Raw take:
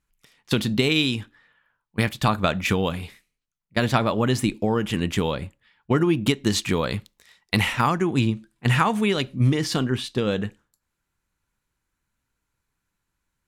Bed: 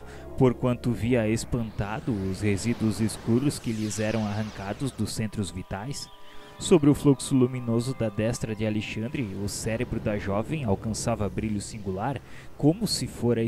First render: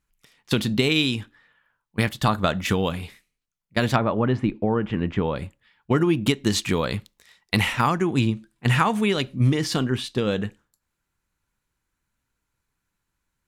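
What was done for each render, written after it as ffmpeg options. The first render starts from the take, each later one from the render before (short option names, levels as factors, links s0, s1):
-filter_complex "[0:a]asettb=1/sr,asplit=3[s0][s1][s2];[s0]atrim=end=2.084[s3];[s1]atrim=start=2.08:end=2.74,asetpts=PTS-STARTPTS,afade=t=in:d=0.004:c=qsin,afade=t=out:st=0.656:d=0.004:c=qsin,bandreject=f=2400:w=7.8[s4];[s2]atrim=start=2.736[s5];[s3][s4]acrossfade=d=0.004:c1=hsin:c2=qsin[s6];[s6][s5]acrossfade=d=0.004:c1=qsin:c2=hsin,asettb=1/sr,asplit=3[s7][s8][s9];[s7]atrim=end=3.964[s10];[s8]atrim=start=3.96:end=5.36,asetpts=PTS-STARTPTS,afade=t=in:d=0.004:c=qsin,afade=t=out:st=1.396:d=0.004:c=qsin,lowpass=1800[s11];[s9]atrim=start=5.356[s12];[s10][s11]acrossfade=d=0.004:c1=hsin:c2=qsin[s13];[s13][s12]acrossfade=d=0.004:c1=qsin:c2=hsin"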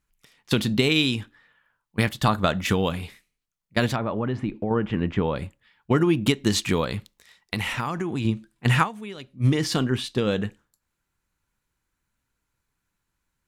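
-filter_complex "[0:a]asettb=1/sr,asplit=3[s0][s1][s2];[s0]atrim=end=3.864[s3];[s1]atrim=start=3.86:end=4.71,asetpts=PTS-STARTPTS,afade=t=in:d=0.004:c=qsin,afade=t=out:st=0.846:d=0.004:c=qsin,acompressor=threshold=0.0562:ratio=2:attack=3.2:release=140:knee=1:detection=peak[s4];[s2]atrim=start=4.706[s5];[s3][s4]acrossfade=d=0.004:c1=hsin:c2=qsin[s6];[s6][s5]acrossfade=d=0.004:c1=qsin:c2=hsin,asettb=1/sr,asplit=3[s7][s8][s9];[s7]atrim=end=6.844[s10];[s8]atrim=start=6.84:end=8.25,asetpts=PTS-STARTPTS,afade=t=in:d=0.004:c=qsin,afade=t=out:st=1.406:d=0.004:c=qsin,acompressor=threshold=0.0708:ratio=6:attack=3.2:release=140:knee=1:detection=peak[s11];[s9]atrim=start=8.246[s12];[s10][s11]acrossfade=d=0.004:c1=hsin:c2=qsin[s13];[s13][s12]acrossfade=d=0.004:c1=qsin:c2=hsin,asplit=3[s14][s15][s16];[s14]atrim=end=9.07,asetpts=PTS-STARTPTS,afade=t=out:st=8.83:d=0.24:c=exp:silence=0.177828[s17];[s15]atrim=start=9.07:end=9.21,asetpts=PTS-STARTPTS,volume=0.178[s18];[s16]atrim=start=9.21,asetpts=PTS-STARTPTS,afade=t=in:d=0.24:c=exp:silence=0.177828[s19];[s17][s18][s19]concat=n=3:v=0:a=1"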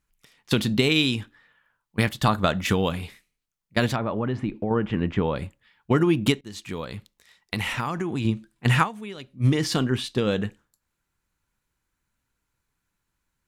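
-filter_complex "[0:a]asplit=2[s0][s1];[s0]atrim=end=6.41,asetpts=PTS-STARTPTS,afade=t=out:st=6.406:d=0.004:c=hsin:silence=0.0668344[s2];[s1]atrim=start=6.41,asetpts=PTS-STARTPTS,afade=t=in:d=1.2:silence=0.0668344[s3];[s2][s3]concat=n=2:v=0:a=1"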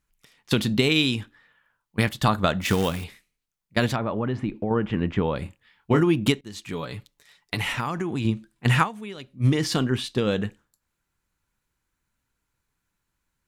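-filter_complex "[0:a]asettb=1/sr,asplit=3[s0][s1][s2];[s0]atrim=end=2.614[s3];[s1]atrim=start=2.61:end=3.04,asetpts=PTS-STARTPTS,afade=t=in:d=0.004:c=qsin,afade=t=out:st=0.426:d=0.004:c=qsin,acrusher=bits=3:mode=log:mix=0:aa=0.000001[s4];[s2]atrim=start=3.036[s5];[s3][s4]acrossfade=d=0.004:c1=hsin:c2=qsin[s6];[s6][s5]acrossfade=d=0.004:c1=qsin:c2=hsin,asettb=1/sr,asplit=3[s7][s8][s9];[s7]atrim=end=5.434[s10];[s8]atrim=start=5.43:end=6.01,asetpts=PTS-STARTPTS,afade=t=in:d=0.004:c=qsin,afade=t=out:st=0.576:d=0.004:c=qsin,asplit=2[s11][s12];[s12]adelay=26,volume=0.501[s13];[s11][s13]amix=inputs=2:normalize=0,atrim=end_sample=25578[s14];[s9]atrim=start=6.006[s15];[s10][s14]acrossfade=d=0.004:c1=hsin:c2=qsin[s16];[s16][s15]acrossfade=d=0.004:c1=qsin:c2=hsin,asettb=1/sr,asplit=3[s17][s18][s19];[s17]atrim=end=6.724[s20];[s18]atrim=start=6.72:end=7.72,asetpts=PTS-STARTPTS,afade=t=in:d=0.004:c=qsin,afade=t=out:st=0.996:d=0.004:c=qsin,aecho=1:1:7:0.56,atrim=end_sample=44100[s21];[s19]atrim=start=7.716[s22];[s20][s21]acrossfade=d=0.004:c1=hsin:c2=qsin[s23];[s23][s22]acrossfade=d=0.004:c1=qsin:c2=hsin"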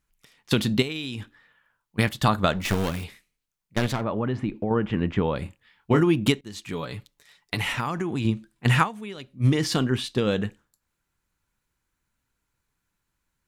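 -filter_complex "[0:a]asettb=1/sr,asplit=3[s0][s1][s2];[s0]atrim=end=0.824[s3];[s1]atrim=start=0.82:end=1.99,asetpts=PTS-STARTPTS,afade=t=in:d=0.004:c=qsin,afade=t=out:st=1.166:d=0.004:c=qsin,acompressor=threshold=0.0398:ratio=6:attack=3.2:release=140:knee=1:detection=peak[s4];[s2]atrim=start=1.986[s5];[s3][s4]acrossfade=d=0.004:c1=hsin:c2=qsin[s6];[s6][s5]acrossfade=d=0.004:c1=qsin:c2=hsin,asettb=1/sr,asplit=3[s7][s8][s9];[s7]atrim=end=2.524[s10];[s8]atrim=start=2.52:end=4.04,asetpts=PTS-STARTPTS,afade=t=in:d=0.004:c=qsin,afade=t=out:st=1.516:d=0.004:c=qsin,aeval=exprs='clip(val(0),-1,0.0355)':c=same[s11];[s9]atrim=start=4.036[s12];[s10][s11]acrossfade=d=0.004:c1=hsin:c2=qsin[s13];[s13][s12]acrossfade=d=0.004:c1=qsin:c2=hsin"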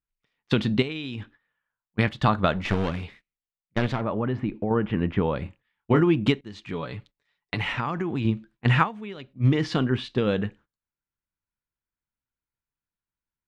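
-af "agate=range=0.158:threshold=0.00355:ratio=16:detection=peak,lowpass=3200"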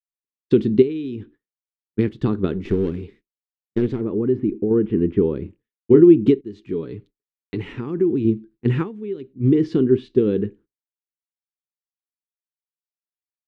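-af "agate=range=0.0224:threshold=0.00282:ratio=3:detection=peak,firequalizer=gain_entry='entry(140,0);entry(390,14);entry(600,-14);entry(1700,-11)':delay=0.05:min_phase=1"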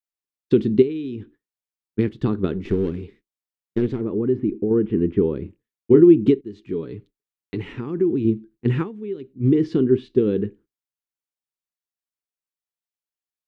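-af "volume=0.891"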